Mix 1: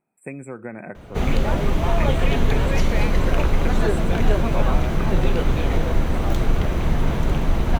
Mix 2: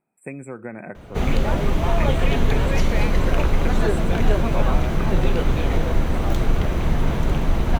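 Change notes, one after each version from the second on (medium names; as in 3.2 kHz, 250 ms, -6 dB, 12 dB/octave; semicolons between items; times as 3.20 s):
no change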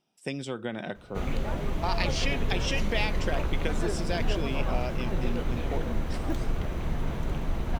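speech: remove brick-wall FIR band-stop 2.6–7.3 kHz; background -10.0 dB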